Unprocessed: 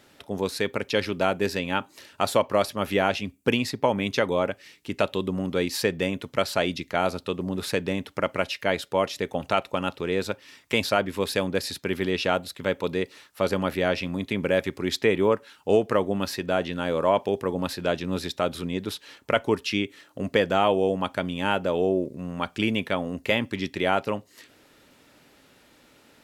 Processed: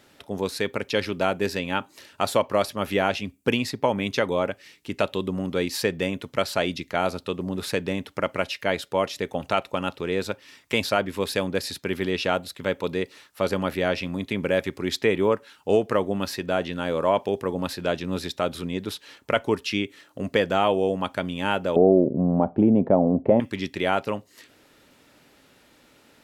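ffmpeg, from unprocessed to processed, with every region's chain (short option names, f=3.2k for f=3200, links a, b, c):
-filter_complex "[0:a]asettb=1/sr,asplit=3[a][b][c];[a]atrim=end=21.764[d];[b]atrim=start=21.76:end=23.4,asetpts=PTS-STARTPTS,afade=t=in:d=0.004:c=qsin,afade=t=out:st=1.636:d=0.004:c=qsin,equalizer=f=210:w=0.42:g=13,acompressor=threshold=-18dB:ratio=2:attack=3.2:release=140:knee=1:detection=peak,lowpass=f=720:t=q:w=2.8[e];[c]atrim=start=23.396[f];[d][e]acrossfade=d=0.004:c1=hsin:c2=qsin[g];[g][f]acrossfade=d=0.004:c1=qsin:c2=hsin"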